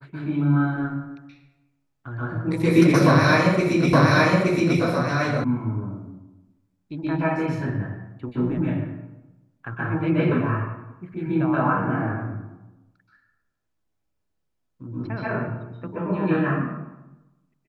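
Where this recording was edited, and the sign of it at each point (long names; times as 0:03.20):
0:03.93: the same again, the last 0.87 s
0:05.44: cut off before it has died away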